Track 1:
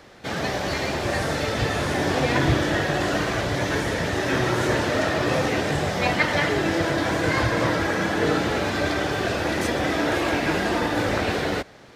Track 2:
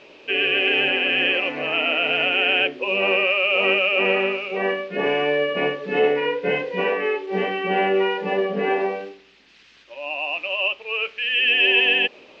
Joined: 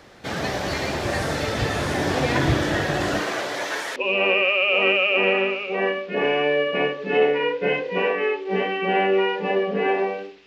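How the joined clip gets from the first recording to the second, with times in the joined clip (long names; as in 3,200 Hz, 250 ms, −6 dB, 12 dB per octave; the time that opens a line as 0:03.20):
track 1
0:03.19–0:03.96: high-pass filter 260 Hz → 850 Hz
0:03.96: continue with track 2 from 0:02.78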